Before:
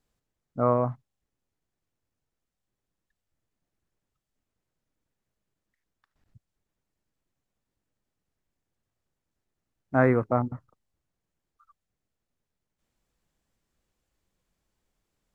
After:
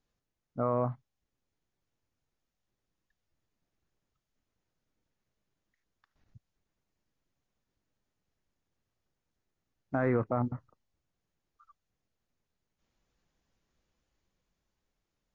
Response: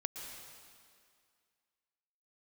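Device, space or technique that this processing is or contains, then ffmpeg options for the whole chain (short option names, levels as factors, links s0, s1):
low-bitrate web radio: -af "dynaudnorm=f=110:g=21:m=1.58,alimiter=limit=0.2:level=0:latency=1:release=17,volume=0.668" -ar 16000 -c:a libmp3lame -b:a 32k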